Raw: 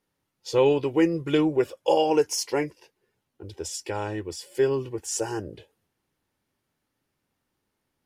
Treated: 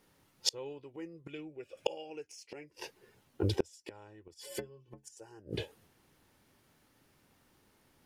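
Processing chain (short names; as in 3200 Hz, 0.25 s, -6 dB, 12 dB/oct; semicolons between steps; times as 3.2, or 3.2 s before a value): 1.28–2.64 thirty-one-band EQ 1000 Hz -11 dB, 2500 Hz +11 dB, 12500 Hz -10 dB; flipped gate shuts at -25 dBFS, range -34 dB; 4.34–5.17 metallic resonator 64 Hz, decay 0.29 s, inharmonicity 0.03; gain +10.5 dB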